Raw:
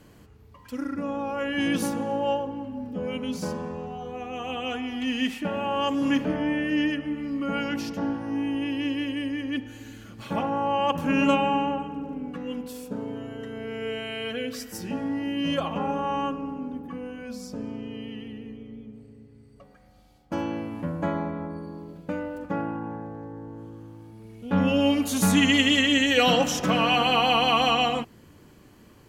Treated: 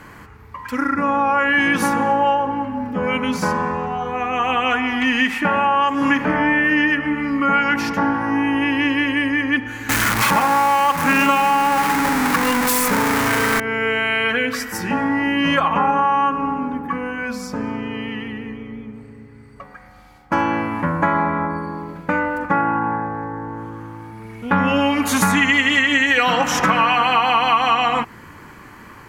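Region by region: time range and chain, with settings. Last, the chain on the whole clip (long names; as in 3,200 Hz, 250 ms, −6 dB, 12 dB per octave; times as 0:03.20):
0:09.89–0:13.60: converter with a step at zero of −26.5 dBFS + high-shelf EQ 4,400 Hz +11 dB
whole clip: flat-topped bell 1,400 Hz +12 dB; downward compressor 6 to 1, threshold −22 dBFS; level +8.5 dB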